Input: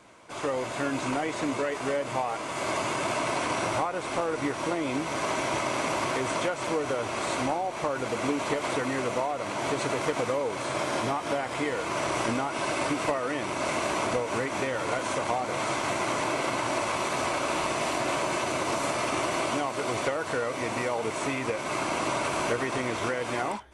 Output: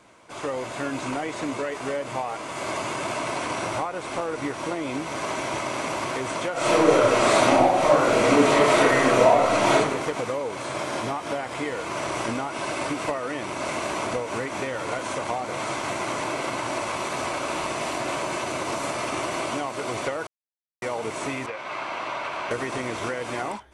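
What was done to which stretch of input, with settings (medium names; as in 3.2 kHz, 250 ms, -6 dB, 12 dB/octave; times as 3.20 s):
6.52–9.73 s: reverb throw, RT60 0.87 s, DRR -10.5 dB
20.27–20.82 s: mute
21.46–22.51 s: three-band isolator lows -12 dB, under 570 Hz, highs -21 dB, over 4.4 kHz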